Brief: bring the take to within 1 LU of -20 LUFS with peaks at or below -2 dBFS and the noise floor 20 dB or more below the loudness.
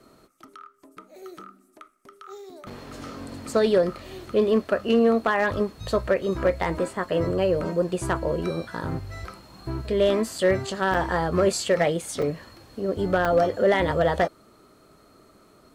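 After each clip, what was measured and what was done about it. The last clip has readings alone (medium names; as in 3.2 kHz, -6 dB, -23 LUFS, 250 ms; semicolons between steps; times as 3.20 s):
clipped samples 0.2%; clipping level -12.5 dBFS; dropouts 5; longest dropout 4.4 ms; loudness -24.0 LUFS; peak level -12.5 dBFS; loudness target -20.0 LUFS
-> clip repair -12.5 dBFS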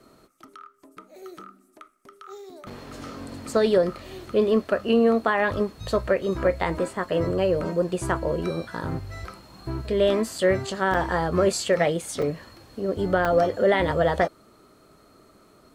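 clipped samples 0.0%; dropouts 5; longest dropout 4.4 ms
-> interpolate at 2.70/10.38/10.94/12.22/13.25 s, 4.4 ms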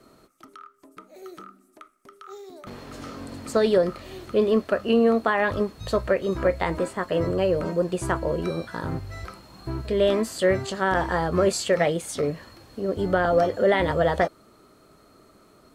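dropouts 0; loudness -24.0 LUFS; peak level -7.0 dBFS; loudness target -20.0 LUFS
-> trim +4 dB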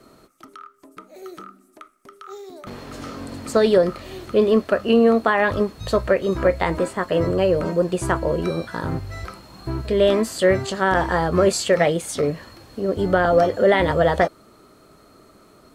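loudness -20.0 LUFS; peak level -3.0 dBFS; noise floor -52 dBFS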